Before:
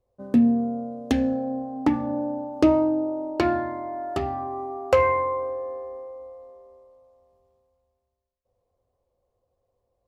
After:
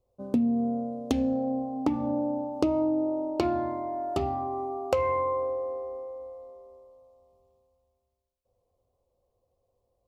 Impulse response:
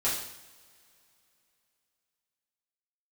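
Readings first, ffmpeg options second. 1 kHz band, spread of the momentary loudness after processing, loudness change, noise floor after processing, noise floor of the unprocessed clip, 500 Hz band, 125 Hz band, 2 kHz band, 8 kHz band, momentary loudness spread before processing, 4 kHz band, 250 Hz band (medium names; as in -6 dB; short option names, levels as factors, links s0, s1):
-3.5 dB, 11 LU, -4.5 dB, -78 dBFS, -78 dBFS, -3.5 dB, -3.5 dB, -10.5 dB, no reading, 14 LU, -4.0 dB, -4.5 dB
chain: -af "equalizer=f=1700:w=2.8:g=-13.5,acompressor=threshold=0.0794:ratio=6"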